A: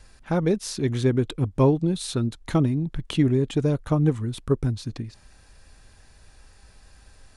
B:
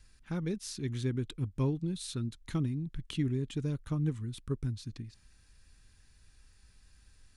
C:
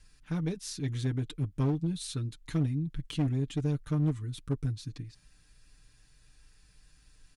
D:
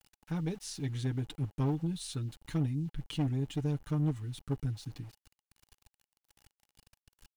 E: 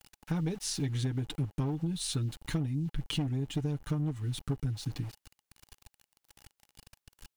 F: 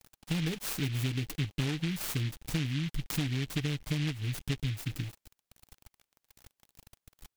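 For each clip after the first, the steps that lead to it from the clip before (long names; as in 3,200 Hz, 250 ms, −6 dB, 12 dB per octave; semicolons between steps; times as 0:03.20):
parametric band 660 Hz −13 dB 1.5 octaves; level −8.5 dB
comb filter 6.7 ms, depth 70%; asymmetric clip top −28.5 dBFS, bottom −19.5 dBFS
centre clipping without the shift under −51 dBFS; hollow resonant body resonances 830/2,900 Hz, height 8 dB, ringing for 30 ms; level −2.5 dB
downward compressor 10 to 1, threshold −36 dBFS, peak gain reduction 11 dB; level +8 dB
short delay modulated by noise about 2,600 Hz, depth 0.24 ms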